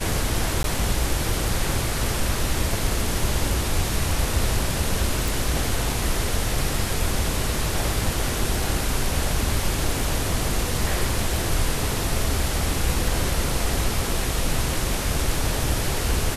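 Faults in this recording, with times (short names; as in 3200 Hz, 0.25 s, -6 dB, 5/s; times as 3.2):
0.63–0.64 gap 12 ms
5.28 pop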